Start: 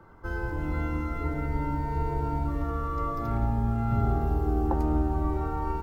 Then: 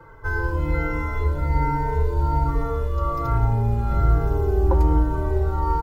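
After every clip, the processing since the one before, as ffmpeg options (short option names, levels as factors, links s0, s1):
-filter_complex "[0:a]aecho=1:1:2:0.7,asplit=2[s0][s1];[s1]adelay=3.9,afreqshift=-1.2[s2];[s0][s2]amix=inputs=2:normalize=1,volume=2.37"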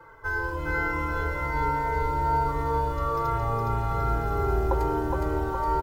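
-af "lowshelf=f=330:g=-11.5,aecho=1:1:414|828|1242|1656|2070|2484|2898:0.708|0.354|0.177|0.0885|0.0442|0.0221|0.0111"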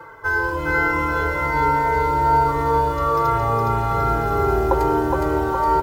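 -af "highpass=f=120:p=1,areverse,acompressor=mode=upward:threshold=0.0141:ratio=2.5,areverse,volume=2.66"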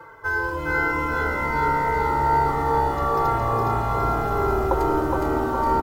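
-filter_complex "[0:a]asplit=9[s0][s1][s2][s3][s4][s5][s6][s7][s8];[s1]adelay=444,afreqshift=-65,volume=0.376[s9];[s2]adelay=888,afreqshift=-130,volume=0.237[s10];[s3]adelay=1332,afreqshift=-195,volume=0.15[s11];[s4]adelay=1776,afreqshift=-260,volume=0.0944[s12];[s5]adelay=2220,afreqshift=-325,volume=0.0589[s13];[s6]adelay=2664,afreqshift=-390,volume=0.0372[s14];[s7]adelay=3108,afreqshift=-455,volume=0.0234[s15];[s8]adelay=3552,afreqshift=-520,volume=0.0148[s16];[s0][s9][s10][s11][s12][s13][s14][s15][s16]amix=inputs=9:normalize=0,volume=0.668"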